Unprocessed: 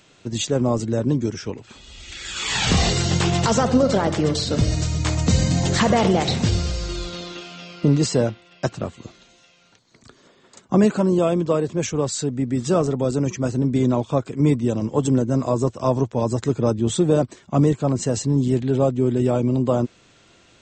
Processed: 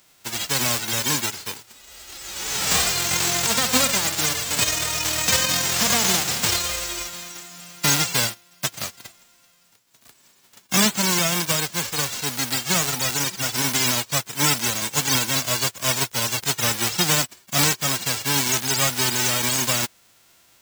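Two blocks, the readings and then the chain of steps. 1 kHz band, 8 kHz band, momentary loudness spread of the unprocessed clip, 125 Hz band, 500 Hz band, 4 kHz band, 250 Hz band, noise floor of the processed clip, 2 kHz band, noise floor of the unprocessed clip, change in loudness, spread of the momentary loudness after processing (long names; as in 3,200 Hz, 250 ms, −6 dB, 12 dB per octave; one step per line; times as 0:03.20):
−0.5 dB, +10.5 dB, 11 LU, −10.0 dB, −10.5 dB, +7.5 dB, −10.0 dB, −57 dBFS, +7.5 dB, −55 dBFS, +0.5 dB, 11 LU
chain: spectral envelope flattened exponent 0.1
level −2.5 dB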